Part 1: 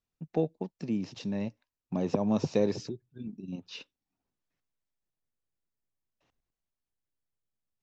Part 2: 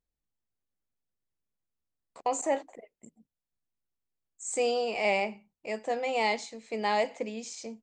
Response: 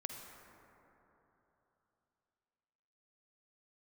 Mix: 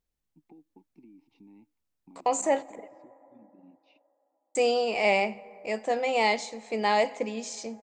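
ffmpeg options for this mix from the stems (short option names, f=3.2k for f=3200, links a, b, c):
-filter_complex "[0:a]asplit=3[a][b][c];[a]bandpass=f=300:t=q:w=8,volume=0dB[d];[b]bandpass=f=870:t=q:w=8,volume=-6dB[e];[c]bandpass=f=2.24k:t=q:w=8,volume=-9dB[f];[d][e][f]amix=inputs=3:normalize=0,alimiter=level_in=13.5dB:limit=-24dB:level=0:latency=1:release=310,volume=-13.5dB,acompressor=threshold=-47dB:ratio=6,adelay=150,volume=-3.5dB[g];[1:a]volume=2.5dB,asplit=3[h][i][j];[h]atrim=end=2.88,asetpts=PTS-STARTPTS,afade=t=out:st=2.876:d=0.004:c=hsin[k];[i]atrim=start=2.88:end=4.55,asetpts=PTS-STARTPTS,volume=0[l];[j]atrim=start=4.55,asetpts=PTS-STARTPTS,afade=t=in:d=0.004:c=hsin[m];[k][l][m]concat=n=3:v=0:a=1,asplit=2[n][o];[o]volume=-14.5dB[p];[2:a]atrim=start_sample=2205[q];[p][q]afir=irnorm=-1:irlink=0[r];[g][n][r]amix=inputs=3:normalize=0"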